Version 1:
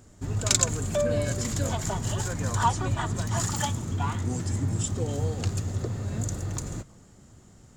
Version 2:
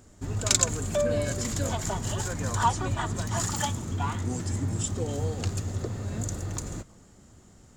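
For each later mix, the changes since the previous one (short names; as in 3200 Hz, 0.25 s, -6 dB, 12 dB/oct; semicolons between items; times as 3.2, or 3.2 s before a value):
master: add bell 130 Hz -4.5 dB 0.65 oct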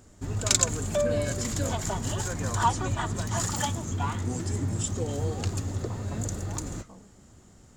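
speech +11.0 dB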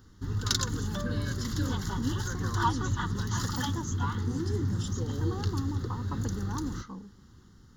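speech +10.5 dB; master: add fixed phaser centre 2400 Hz, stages 6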